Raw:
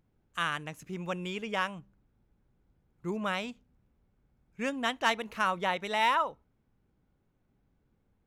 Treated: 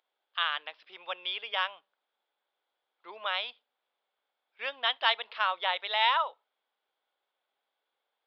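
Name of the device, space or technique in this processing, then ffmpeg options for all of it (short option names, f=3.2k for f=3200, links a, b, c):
musical greeting card: -af "aresample=11025,aresample=44100,highpass=f=600:w=0.5412,highpass=f=600:w=1.3066,equalizer=f=3.4k:t=o:w=0.37:g=12"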